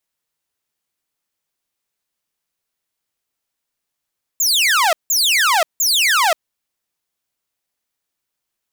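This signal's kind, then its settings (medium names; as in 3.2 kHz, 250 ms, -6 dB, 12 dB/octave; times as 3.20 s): burst of laser zaps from 7.5 kHz, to 610 Hz, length 0.53 s saw, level -9.5 dB, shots 3, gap 0.17 s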